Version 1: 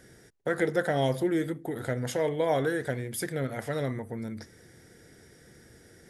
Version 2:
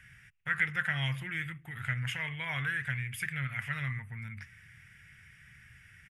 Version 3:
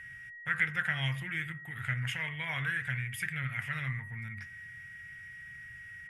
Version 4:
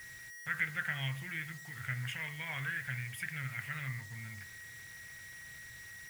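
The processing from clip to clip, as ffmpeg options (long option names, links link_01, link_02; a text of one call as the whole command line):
ffmpeg -i in.wav -af "firequalizer=gain_entry='entry(130,0);entry(290,-26);entry(490,-29);entry(1100,-3);entry(2600,14);entry(3900,-12);entry(8800,-9)':delay=0.05:min_phase=1" out.wav
ffmpeg -i in.wav -af "aeval=exprs='val(0)+0.00562*sin(2*PI*1900*n/s)':channel_layout=same,bandreject=frequency=71.45:width_type=h:width=4,bandreject=frequency=142.9:width_type=h:width=4,bandreject=frequency=214.35:width_type=h:width=4,bandreject=frequency=285.8:width_type=h:width=4,bandreject=frequency=357.25:width_type=h:width=4,bandreject=frequency=428.7:width_type=h:width=4,bandreject=frequency=500.15:width_type=h:width=4,bandreject=frequency=571.6:width_type=h:width=4,bandreject=frequency=643.05:width_type=h:width=4,bandreject=frequency=714.5:width_type=h:width=4,bandreject=frequency=785.95:width_type=h:width=4,bandreject=frequency=857.4:width_type=h:width=4,bandreject=frequency=928.85:width_type=h:width=4,bandreject=frequency=1000.3:width_type=h:width=4,bandreject=frequency=1071.75:width_type=h:width=4,bandreject=frequency=1143.2:width_type=h:width=4,bandreject=frequency=1214.65:width_type=h:width=4,bandreject=frequency=1286.1:width_type=h:width=4,bandreject=frequency=1357.55:width_type=h:width=4,bandreject=frequency=1429:width_type=h:width=4,bandreject=frequency=1500.45:width_type=h:width=4,bandreject=frequency=1571.9:width_type=h:width=4,bandreject=frequency=1643.35:width_type=h:width=4" out.wav
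ffmpeg -i in.wav -af "acrusher=bits=7:mix=0:aa=0.000001,volume=-4.5dB" out.wav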